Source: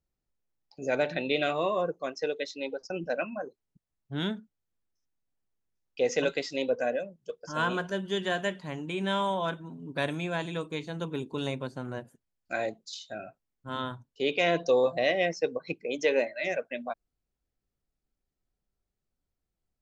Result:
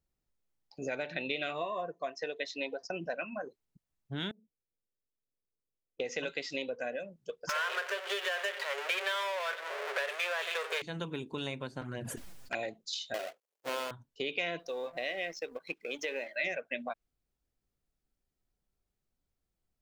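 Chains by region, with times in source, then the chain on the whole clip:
1.61–3.14 s: high-pass 60 Hz + small resonant body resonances 690/1000/1800 Hz, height 15 dB, ringing for 90 ms
4.31–6.00 s: four-pole ladder low-pass 580 Hz, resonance 55% + compression 4:1, threshold -56 dBFS
7.49–10.82 s: power-law waveshaper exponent 0.35 + rippled Chebyshev high-pass 400 Hz, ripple 6 dB
11.81–12.63 s: touch-sensitive flanger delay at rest 9.2 ms, full sweep at -31 dBFS + decay stretcher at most 25 dB/s
13.14–13.91 s: square wave that keeps the level + resonant high-pass 480 Hz, resonance Q 3.8
14.59–16.36 s: companding laws mixed up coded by A + compression 1.5:1, threshold -42 dBFS + peaking EQ 130 Hz -10.5 dB 1.2 oct
whole clip: compression 6:1, threshold -35 dBFS; dynamic bell 2.5 kHz, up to +7 dB, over -55 dBFS, Q 0.74

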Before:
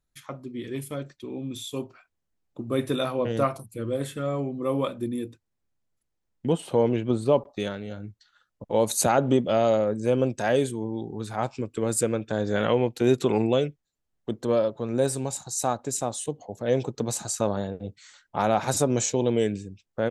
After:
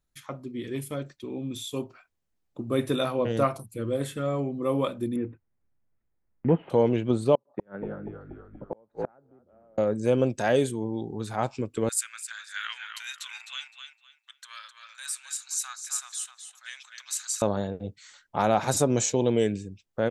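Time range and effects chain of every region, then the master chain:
5.16–6.70 s: block-companded coder 5-bit + steep low-pass 2.3 kHz + bass shelf 230 Hz +5 dB
7.35–9.78 s: Chebyshev band-pass 130–1600 Hz, order 3 + frequency-shifting echo 239 ms, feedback 61%, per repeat -50 Hz, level -9 dB + inverted gate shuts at -19 dBFS, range -37 dB
11.89–17.42 s: steep high-pass 1.4 kHz + tape echo 257 ms, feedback 27%, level -6 dB, low-pass 5.9 kHz
whole clip: none

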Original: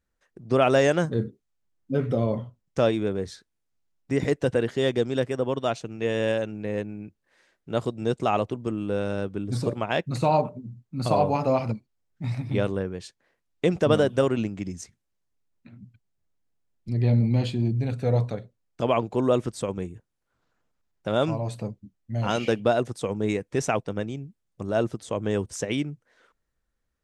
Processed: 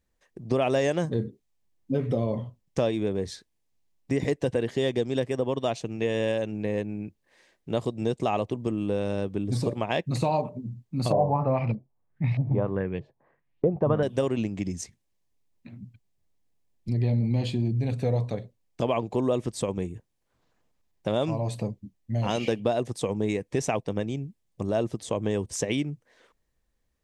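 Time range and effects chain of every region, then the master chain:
11.12–14.03 s: peaking EQ 140 Hz +10 dB 0.37 oct + LFO low-pass saw up 1.6 Hz 520–3100 Hz
whole clip: peaking EQ 1.4 kHz -10.5 dB 0.29 oct; compression 2.5:1, threshold -28 dBFS; trim +3.5 dB

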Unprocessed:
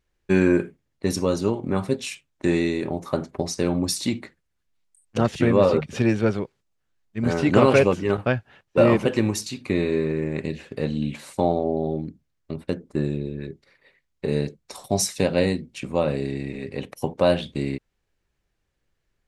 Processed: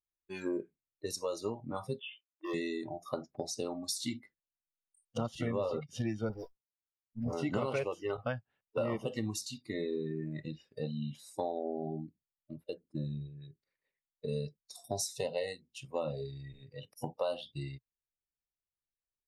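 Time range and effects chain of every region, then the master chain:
1.99–2.54 s: brick-wall FIR band-pass 280–3600 Hz + hard clipper -20.5 dBFS
6.29–7.33 s: phase dispersion highs, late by 96 ms, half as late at 1.8 kHz + sliding maximum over 17 samples
whole clip: spectral noise reduction 21 dB; compression 4:1, threshold -23 dBFS; trim -8 dB

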